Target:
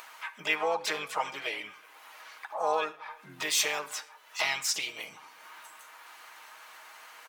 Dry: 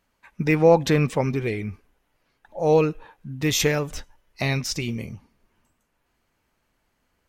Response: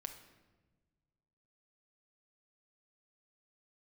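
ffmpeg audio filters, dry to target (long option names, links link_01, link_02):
-filter_complex "[0:a]aecho=1:1:6.4:0.67,acompressor=threshold=-38dB:ratio=2,highpass=frequency=960:width_type=q:width=1.7,acompressor=mode=upward:threshold=-43dB:ratio=2.5,asplit=2[link_01][link_02];[link_02]asetrate=58866,aresample=44100,atempo=0.749154,volume=-4dB[link_03];[link_01][link_03]amix=inputs=2:normalize=0,asplit=2[link_04][link_05];[link_05]adelay=370,highpass=300,lowpass=3400,asoftclip=type=hard:threshold=-28dB,volume=-28dB[link_06];[link_04][link_06]amix=inputs=2:normalize=0,asplit=2[link_07][link_08];[1:a]atrim=start_sample=2205,atrim=end_sample=6174[link_09];[link_08][link_09]afir=irnorm=-1:irlink=0,volume=2dB[link_10];[link_07][link_10]amix=inputs=2:normalize=0"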